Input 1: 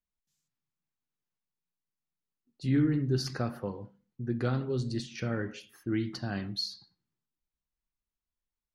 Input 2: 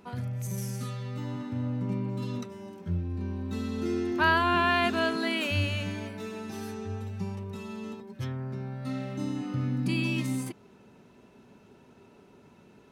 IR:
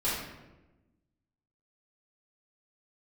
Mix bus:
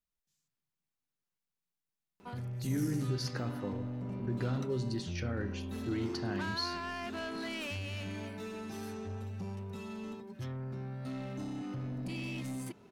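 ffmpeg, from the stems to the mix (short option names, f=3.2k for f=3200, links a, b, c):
-filter_complex "[0:a]alimiter=level_in=1.5dB:limit=-24dB:level=0:latency=1:release=113,volume=-1.5dB,volume=-1dB[a];[1:a]acompressor=threshold=-29dB:ratio=6,asoftclip=type=tanh:threshold=-32dB,adelay=2200,volume=-2.5dB[b];[a][b]amix=inputs=2:normalize=0"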